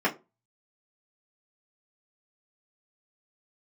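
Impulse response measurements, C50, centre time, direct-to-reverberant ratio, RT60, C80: 17.5 dB, 11 ms, -5.5 dB, 0.25 s, 24.0 dB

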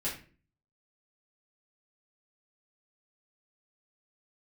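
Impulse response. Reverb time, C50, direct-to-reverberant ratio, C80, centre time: 0.40 s, 6.5 dB, -9.0 dB, 12.0 dB, 29 ms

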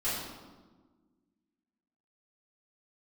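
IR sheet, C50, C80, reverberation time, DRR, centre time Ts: 0.0 dB, 2.5 dB, 1.4 s, -12.5 dB, 80 ms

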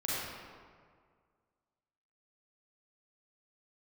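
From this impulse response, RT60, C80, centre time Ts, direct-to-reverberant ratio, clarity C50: 1.9 s, -2.0 dB, 0.135 s, -8.5 dB, -4.5 dB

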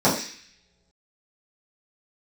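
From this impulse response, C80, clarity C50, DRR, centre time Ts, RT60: 9.5 dB, 6.5 dB, -10.5 dB, 33 ms, not exponential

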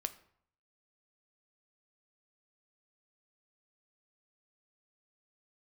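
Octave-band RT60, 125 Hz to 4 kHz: 0.80, 0.65, 0.60, 0.65, 0.55, 0.45 s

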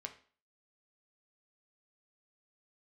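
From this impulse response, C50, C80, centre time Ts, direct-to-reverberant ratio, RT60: 12.5 dB, 16.5 dB, 9 ms, 4.0 dB, 0.45 s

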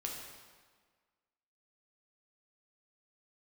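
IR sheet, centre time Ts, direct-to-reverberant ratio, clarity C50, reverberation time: 65 ms, -1.0 dB, 2.0 dB, 1.6 s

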